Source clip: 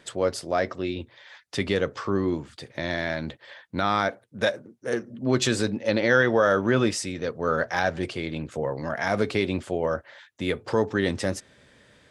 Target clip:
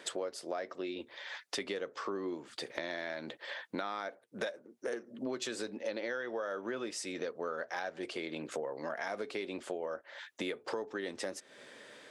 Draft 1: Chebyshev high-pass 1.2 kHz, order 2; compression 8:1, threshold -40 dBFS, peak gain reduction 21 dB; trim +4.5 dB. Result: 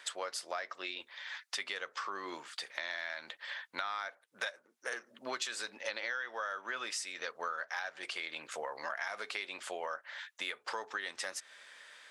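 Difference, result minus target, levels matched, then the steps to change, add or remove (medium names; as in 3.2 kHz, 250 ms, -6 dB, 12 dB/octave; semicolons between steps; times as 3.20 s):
500 Hz band -7.5 dB
change: Chebyshev high-pass 370 Hz, order 2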